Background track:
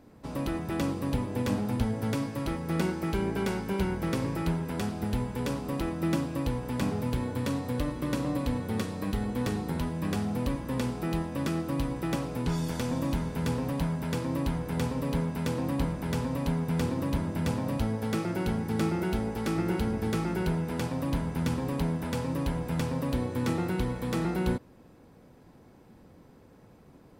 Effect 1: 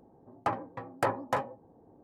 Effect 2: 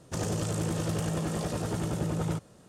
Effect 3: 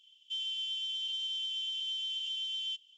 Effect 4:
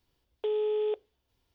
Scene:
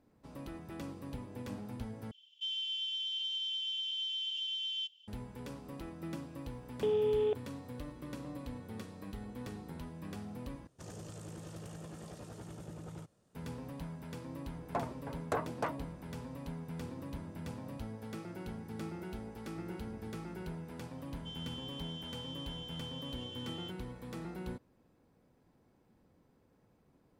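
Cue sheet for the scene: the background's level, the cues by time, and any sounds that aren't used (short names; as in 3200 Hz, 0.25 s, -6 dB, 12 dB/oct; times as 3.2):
background track -14 dB
2.11 replace with 3 -0.5 dB + BPF 530–5400 Hz
6.39 add 4 -1.5 dB
10.67 replace with 2 -16.5 dB
14.29 add 1 -6.5 dB + shaped vibrato square 3.7 Hz, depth 250 cents
20.95 add 3 -11.5 dB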